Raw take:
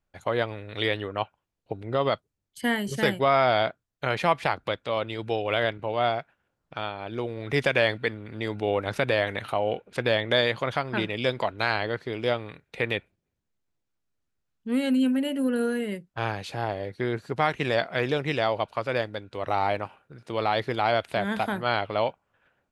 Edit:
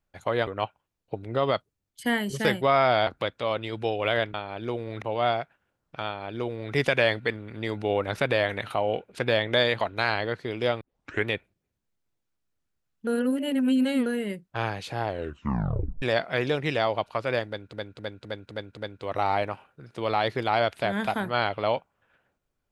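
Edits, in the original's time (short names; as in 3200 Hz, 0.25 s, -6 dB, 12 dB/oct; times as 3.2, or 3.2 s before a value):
0.47–1.05 cut
3.65–4.53 cut
6.84–7.52 copy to 5.8
10.59–11.43 cut
12.43 tape start 0.45 s
14.69–15.68 reverse
16.7 tape stop 0.94 s
19.09–19.35 loop, 6 plays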